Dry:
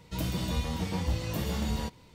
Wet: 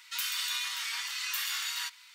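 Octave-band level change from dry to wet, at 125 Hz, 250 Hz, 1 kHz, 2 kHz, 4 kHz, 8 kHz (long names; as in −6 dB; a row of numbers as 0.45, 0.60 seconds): below −40 dB, below −40 dB, −4.0 dB, +8.5 dB, +8.5 dB, +8.5 dB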